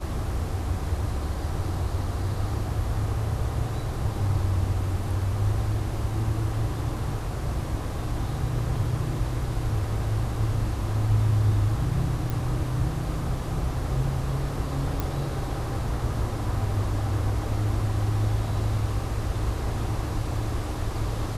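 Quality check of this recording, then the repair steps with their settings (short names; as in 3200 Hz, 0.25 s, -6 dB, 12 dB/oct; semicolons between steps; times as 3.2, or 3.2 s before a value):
12.3 pop
15 pop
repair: de-click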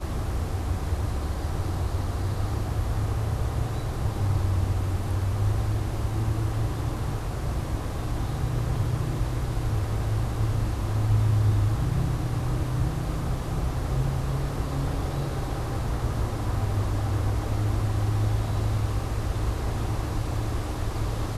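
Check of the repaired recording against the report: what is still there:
none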